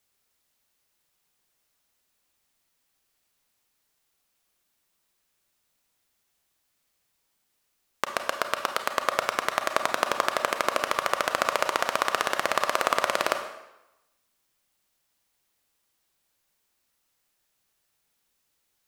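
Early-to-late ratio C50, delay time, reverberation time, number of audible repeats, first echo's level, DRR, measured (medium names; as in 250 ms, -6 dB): 8.0 dB, no echo, 0.95 s, no echo, no echo, 6.0 dB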